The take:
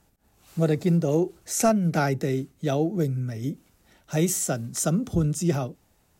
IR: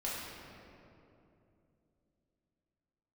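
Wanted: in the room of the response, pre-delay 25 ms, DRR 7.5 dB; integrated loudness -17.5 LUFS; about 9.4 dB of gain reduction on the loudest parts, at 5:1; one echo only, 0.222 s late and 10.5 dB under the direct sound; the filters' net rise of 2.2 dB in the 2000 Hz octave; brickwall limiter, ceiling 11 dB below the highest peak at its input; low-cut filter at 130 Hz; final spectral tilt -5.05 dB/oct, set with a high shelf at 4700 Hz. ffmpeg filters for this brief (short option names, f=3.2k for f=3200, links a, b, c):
-filter_complex "[0:a]highpass=130,equalizer=f=2k:t=o:g=4.5,highshelf=f=4.7k:g=-8,acompressor=threshold=-28dB:ratio=5,alimiter=level_in=4dB:limit=-24dB:level=0:latency=1,volume=-4dB,aecho=1:1:222:0.299,asplit=2[a][b];[1:a]atrim=start_sample=2205,adelay=25[c];[b][c]afir=irnorm=-1:irlink=0,volume=-11.5dB[d];[a][d]amix=inputs=2:normalize=0,volume=18.5dB"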